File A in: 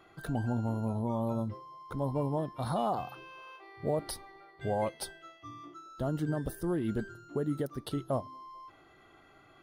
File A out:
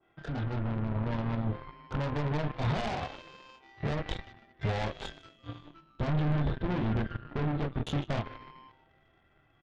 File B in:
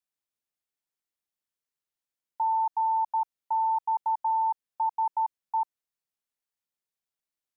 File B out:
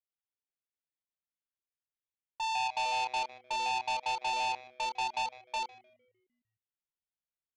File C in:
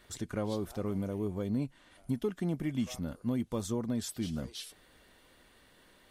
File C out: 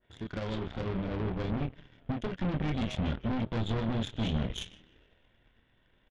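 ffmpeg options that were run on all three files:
-filter_complex "[0:a]bandreject=f=1.2k:w=8.2,asplit=2[a][b];[b]adelay=27,volume=-2.5dB[c];[a][c]amix=inputs=2:normalize=0,acompressor=threshold=-29dB:ratio=4,aresample=8000,asoftclip=type=tanh:threshold=-36dB,aresample=44100,asubboost=boost=2.5:cutoff=190,asplit=7[d][e][f][g][h][i][j];[e]adelay=152,afreqshift=-130,volume=-11dB[k];[f]adelay=304,afreqshift=-260,volume=-16.5dB[l];[g]adelay=456,afreqshift=-390,volume=-22dB[m];[h]adelay=608,afreqshift=-520,volume=-27.5dB[n];[i]adelay=760,afreqshift=-650,volume=-33.1dB[o];[j]adelay=912,afreqshift=-780,volume=-38.6dB[p];[d][k][l][m][n][o][p]amix=inputs=7:normalize=0,aeval=exprs='0.0447*(cos(1*acos(clip(val(0)/0.0447,-1,1)))-cos(1*PI/2))+0.00562*(cos(7*acos(clip(val(0)/0.0447,-1,1)))-cos(7*PI/2))':c=same,adynamicequalizer=threshold=0.00224:dfrequency=1600:dqfactor=0.7:tfrequency=1600:tqfactor=0.7:attack=5:release=100:ratio=0.375:range=2.5:mode=boostabove:tftype=highshelf,volume=6.5dB"

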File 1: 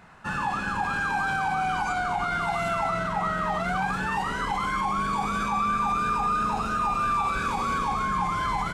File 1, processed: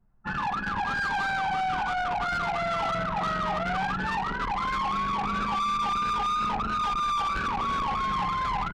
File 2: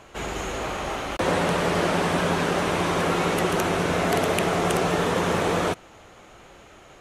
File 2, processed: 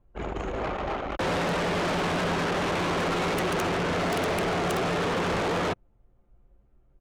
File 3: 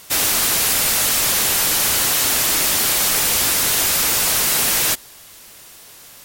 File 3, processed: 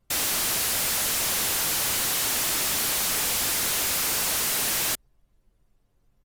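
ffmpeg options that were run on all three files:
-af "anlmdn=158,asoftclip=type=hard:threshold=-18.5dB,aresample=32000,aresample=44100,asoftclip=type=tanh:threshold=-29dB,aeval=exprs='0.0355*(cos(1*acos(clip(val(0)/0.0355,-1,1)))-cos(1*PI/2))+0.000251*(cos(5*acos(clip(val(0)/0.0355,-1,1)))-cos(5*PI/2))':c=same,volume=4.5dB"

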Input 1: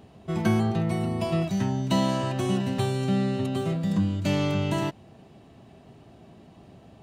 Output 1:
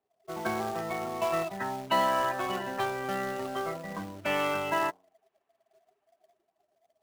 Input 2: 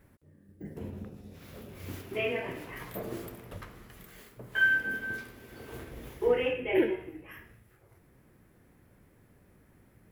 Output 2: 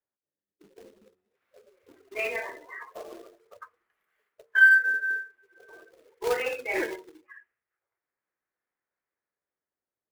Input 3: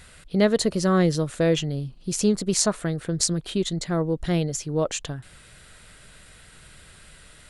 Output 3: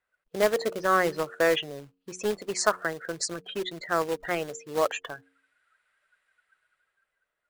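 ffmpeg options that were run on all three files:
-filter_complex "[0:a]acrossover=split=390 2100:gain=0.0891 1 0.126[a][b][c];[a][b][c]amix=inputs=3:normalize=0,afftdn=nr=27:nf=-42,acrossover=split=1200[d][e];[d]acrusher=bits=2:mode=log:mix=0:aa=0.000001[f];[e]dynaudnorm=f=130:g=13:m=12dB[g];[f][g]amix=inputs=2:normalize=0,bandreject=f=91.57:t=h:w=4,bandreject=f=183.14:t=h:w=4,bandreject=f=274.71:t=h:w=4,bandreject=f=366.28:t=h:w=4,bandreject=f=457.85:t=h:w=4"

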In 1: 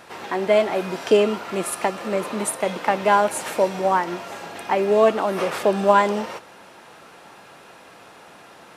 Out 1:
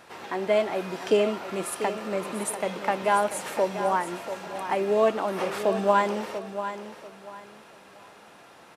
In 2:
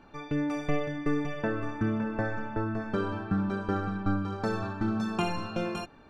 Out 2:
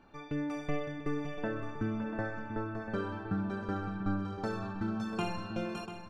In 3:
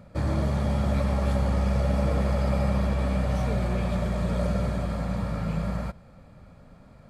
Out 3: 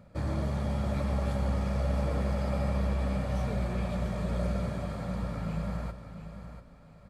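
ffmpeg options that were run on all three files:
-af "aecho=1:1:691|1382|2073:0.299|0.0806|0.0218,volume=-5.5dB"

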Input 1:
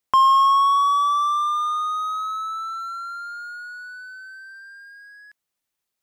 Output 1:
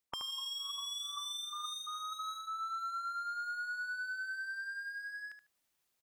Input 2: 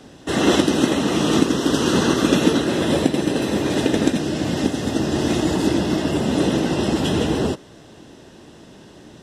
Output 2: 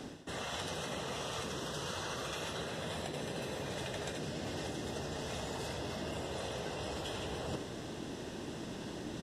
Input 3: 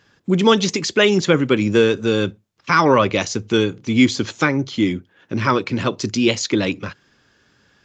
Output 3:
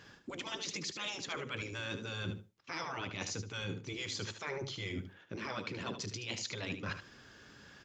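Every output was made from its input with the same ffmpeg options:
-af "afftfilt=real='re*lt(hypot(re,im),0.501)':imag='im*lt(hypot(re,im),0.501)':win_size=1024:overlap=0.75,areverse,acompressor=threshold=-38dB:ratio=16,areverse,aecho=1:1:75|150:0.335|0.0536,volume=1dB"

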